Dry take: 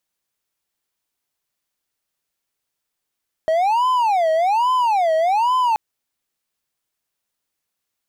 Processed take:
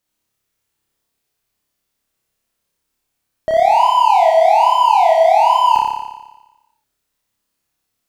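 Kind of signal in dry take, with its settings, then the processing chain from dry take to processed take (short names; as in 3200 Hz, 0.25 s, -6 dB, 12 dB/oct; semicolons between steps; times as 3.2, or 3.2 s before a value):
siren wail 635–1020 Hz 1.2/s triangle -12.5 dBFS 2.28 s
low shelf 290 Hz +8.5 dB; on a send: flutter echo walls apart 5 m, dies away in 1.1 s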